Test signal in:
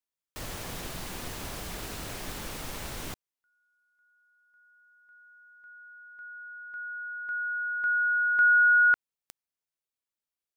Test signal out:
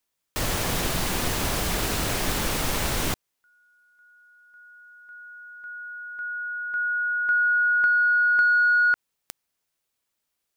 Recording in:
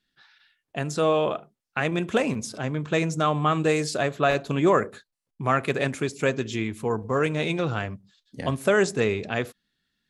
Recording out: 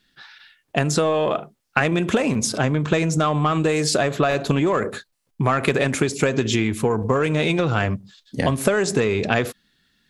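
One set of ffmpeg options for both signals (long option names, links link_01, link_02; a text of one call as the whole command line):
ffmpeg -i in.wav -filter_complex "[0:a]asplit=2[link_01][link_02];[link_02]asoftclip=type=tanh:threshold=-18.5dB,volume=-3dB[link_03];[link_01][link_03]amix=inputs=2:normalize=0,acompressor=threshold=-28dB:ratio=6:attack=40:release=112:knee=1:detection=peak,volume=7.5dB" out.wav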